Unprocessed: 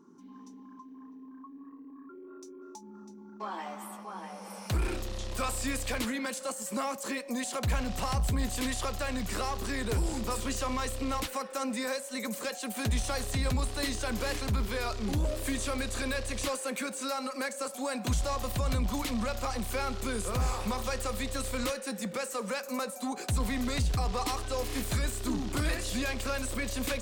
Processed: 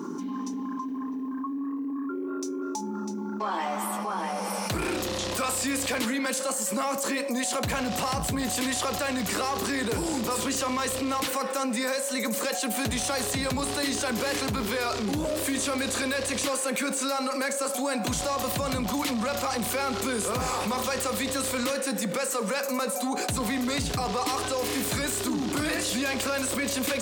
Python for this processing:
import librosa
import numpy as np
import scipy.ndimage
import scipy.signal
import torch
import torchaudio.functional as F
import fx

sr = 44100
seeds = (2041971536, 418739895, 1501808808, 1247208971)

y = scipy.signal.sosfilt(scipy.signal.butter(2, 160.0, 'highpass', fs=sr, output='sos'), x)
y = fx.rev_fdn(y, sr, rt60_s=0.57, lf_ratio=1.0, hf_ratio=0.6, size_ms=20.0, drr_db=15.0)
y = fx.env_flatten(y, sr, amount_pct=70)
y = y * 10.0 ** (2.5 / 20.0)